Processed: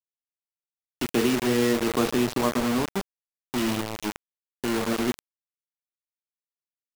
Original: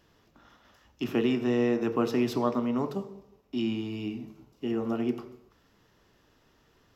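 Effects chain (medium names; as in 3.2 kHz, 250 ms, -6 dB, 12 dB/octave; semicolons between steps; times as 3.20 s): 2.07–2.85 s: hysteresis with a dead band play -37.5 dBFS; bit crusher 5-bit; trim +2.5 dB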